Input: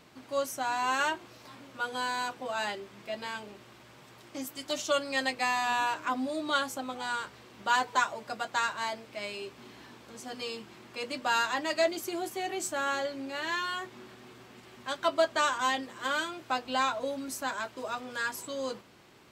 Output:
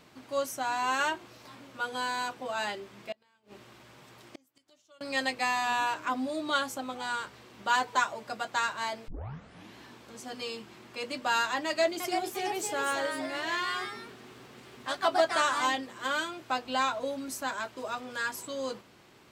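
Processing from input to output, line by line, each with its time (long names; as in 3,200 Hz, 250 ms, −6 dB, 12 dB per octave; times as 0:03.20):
0:03.12–0:05.01: gate with flip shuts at −31 dBFS, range −31 dB
0:09.08: tape start 0.68 s
0:11.65–0:15.88: delay with pitch and tempo change per echo 349 ms, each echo +2 semitones, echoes 2, each echo −6 dB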